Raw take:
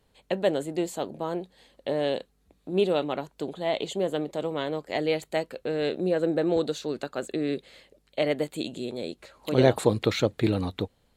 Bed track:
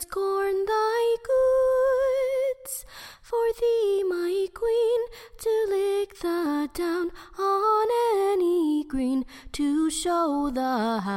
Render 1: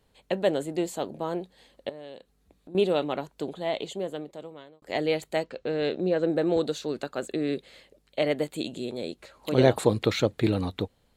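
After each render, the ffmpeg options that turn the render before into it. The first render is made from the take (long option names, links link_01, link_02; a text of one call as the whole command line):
ffmpeg -i in.wav -filter_complex "[0:a]asettb=1/sr,asplit=3[link_01][link_02][link_03];[link_01]atrim=end=1.894[link_04];[link_02]atrim=start=1.89:end=2.75,asetpts=PTS-STARTPTS,afade=type=in:duration=0.004:curve=qsin,afade=type=out:start_time=0.856:duration=0.004:curve=qsin,acompressor=threshold=-47dB:ratio=2.5:attack=3.2:release=140:knee=1:detection=peak[link_05];[link_03]atrim=start=2.746[link_06];[link_04][link_05]acrossfade=duration=0.004:curve1=hsin:curve2=qsin[link_07];[link_07][link_06]acrossfade=duration=0.004:curve1=qsin:curve2=hsin,asettb=1/sr,asplit=3[link_08][link_09][link_10];[link_08]atrim=end=5.444[link_11];[link_09]atrim=start=5.44:end=6.3,asetpts=PTS-STARTPTS,afade=type=in:duration=0.004:curve=qsin,afade=type=out:start_time=0.856:duration=0.004:curve=qsin,lowpass=frequency=6600:width=0.5412,lowpass=frequency=6600:width=1.3066[link_12];[link_10]atrim=start=6.296[link_13];[link_11][link_12]acrossfade=duration=0.004:curve1=hsin:curve2=qsin[link_14];[link_14][link_13]acrossfade=duration=0.004:curve1=qsin:curve2=hsin,asplit=2[link_15][link_16];[link_15]atrim=end=4.82,asetpts=PTS-STARTPTS,afade=type=out:start_time=3.43:duration=1.39[link_17];[link_16]atrim=start=4.82,asetpts=PTS-STARTPTS,afade=type=in:duration=0.004:curve=hsin[link_18];[link_17][link_18]concat=n=2:v=0:a=1" out.wav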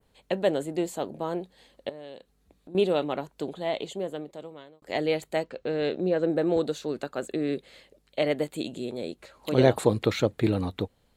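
ffmpeg -i in.wav -af "adynamicequalizer=threshold=0.00355:dfrequency=4300:dqfactor=0.83:tfrequency=4300:tqfactor=0.83:attack=5:release=100:ratio=0.375:range=2:mode=cutabove:tftype=bell" out.wav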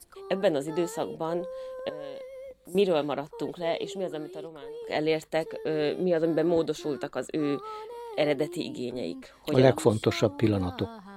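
ffmpeg -i in.wav -i bed.wav -filter_complex "[1:a]volume=-17.5dB[link_01];[0:a][link_01]amix=inputs=2:normalize=0" out.wav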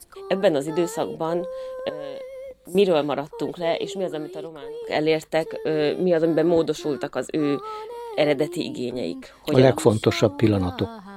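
ffmpeg -i in.wav -af "volume=5.5dB,alimiter=limit=-2dB:level=0:latency=1" out.wav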